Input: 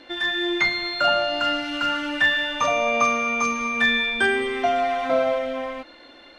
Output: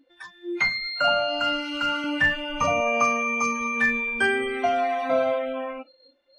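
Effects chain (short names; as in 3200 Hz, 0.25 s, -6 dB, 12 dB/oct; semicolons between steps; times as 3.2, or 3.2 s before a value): spectral noise reduction 26 dB; 2.04–2.81 tone controls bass +11 dB, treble -1 dB; gain -1.5 dB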